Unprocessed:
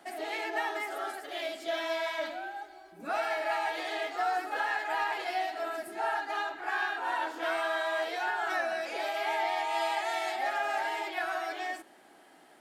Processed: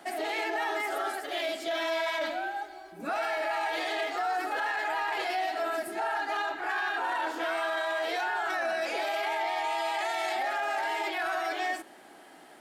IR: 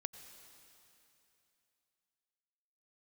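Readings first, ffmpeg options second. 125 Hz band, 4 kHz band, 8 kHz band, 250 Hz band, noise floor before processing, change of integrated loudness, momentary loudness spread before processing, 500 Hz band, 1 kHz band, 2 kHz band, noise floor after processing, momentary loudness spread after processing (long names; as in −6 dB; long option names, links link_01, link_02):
can't be measured, +2.5 dB, +3.0 dB, +3.5 dB, −57 dBFS, +1.5 dB, 6 LU, +2.0 dB, +1.5 dB, +2.0 dB, −52 dBFS, 3 LU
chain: -af "alimiter=level_in=4.5dB:limit=-24dB:level=0:latency=1:release=14,volume=-4.5dB,volume=5.5dB"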